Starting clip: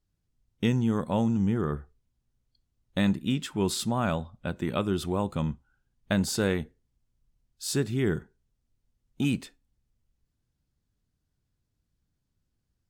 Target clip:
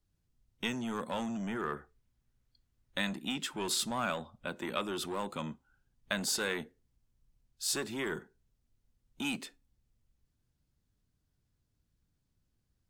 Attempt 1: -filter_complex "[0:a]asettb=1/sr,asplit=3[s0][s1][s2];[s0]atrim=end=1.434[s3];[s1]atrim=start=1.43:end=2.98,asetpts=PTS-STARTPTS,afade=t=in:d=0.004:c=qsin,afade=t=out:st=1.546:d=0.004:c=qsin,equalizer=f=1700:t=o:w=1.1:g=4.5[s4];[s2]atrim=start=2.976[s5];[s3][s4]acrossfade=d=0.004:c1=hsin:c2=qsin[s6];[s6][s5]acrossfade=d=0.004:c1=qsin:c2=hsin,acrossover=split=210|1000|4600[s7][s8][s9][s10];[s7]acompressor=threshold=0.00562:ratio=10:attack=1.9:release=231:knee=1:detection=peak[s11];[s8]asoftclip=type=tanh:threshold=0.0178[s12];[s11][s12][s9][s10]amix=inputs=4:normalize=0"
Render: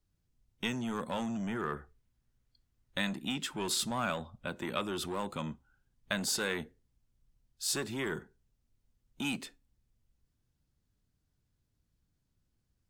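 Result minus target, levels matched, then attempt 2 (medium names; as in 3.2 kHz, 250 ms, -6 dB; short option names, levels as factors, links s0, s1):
compression: peak gain reduction -8.5 dB
-filter_complex "[0:a]asettb=1/sr,asplit=3[s0][s1][s2];[s0]atrim=end=1.434[s3];[s1]atrim=start=1.43:end=2.98,asetpts=PTS-STARTPTS,afade=t=in:d=0.004:c=qsin,afade=t=out:st=1.546:d=0.004:c=qsin,equalizer=f=1700:t=o:w=1.1:g=4.5[s4];[s2]atrim=start=2.976[s5];[s3][s4]acrossfade=d=0.004:c1=hsin:c2=qsin[s6];[s6][s5]acrossfade=d=0.004:c1=qsin:c2=hsin,acrossover=split=210|1000|4600[s7][s8][s9][s10];[s7]acompressor=threshold=0.00188:ratio=10:attack=1.9:release=231:knee=1:detection=peak[s11];[s8]asoftclip=type=tanh:threshold=0.0178[s12];[s11][s12][s9][s10]amix=inputs=4:normalize=0"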